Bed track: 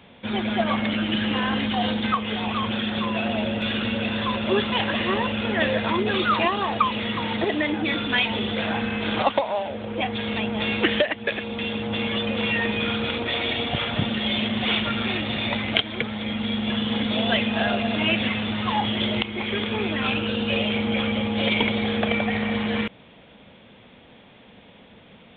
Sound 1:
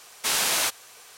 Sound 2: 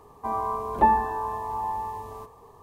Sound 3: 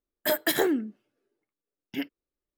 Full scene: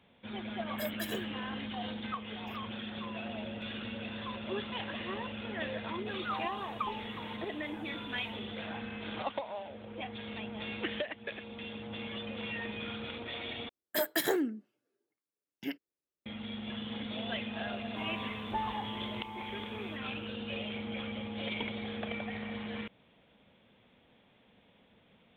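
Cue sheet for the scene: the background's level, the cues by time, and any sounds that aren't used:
bed track -15 dB
0.53 s: add 3 -17.5 dB + comb 1.8 ms, depth 99%
6.05 s: add 2 -4.5 dB + resonator arpeggio 3.8 Hz 100–530 Hz
13.69 s: replace with 3 -5.5 dB + high-pass 98 Hz
17.72 s: add 2 -16.5 dB
not used: 1

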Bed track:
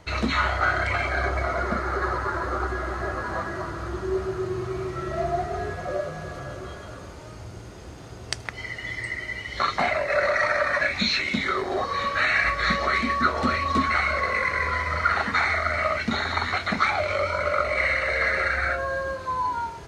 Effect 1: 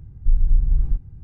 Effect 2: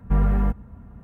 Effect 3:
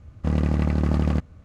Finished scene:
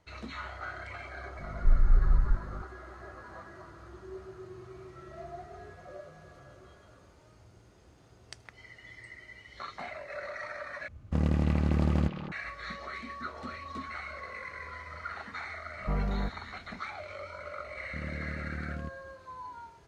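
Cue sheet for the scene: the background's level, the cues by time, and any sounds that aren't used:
bed track -17.5 dB
1.39 s: add 1 -5.5 dB + hum 50 Hz, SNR 19 dB
10.88 s: replace with 3 -5 dB + repeats whose band climbs or falls 206 ms, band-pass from 3 kHz, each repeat -1.4 oct, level -1 dB
15.77 s: add 2 -12 dB + peaking EQ 620 Hz +7 dB 2.3 oct
17.69 s: add 3 -17 dB + high-order bell 810 Hz -15 dB 1 oct

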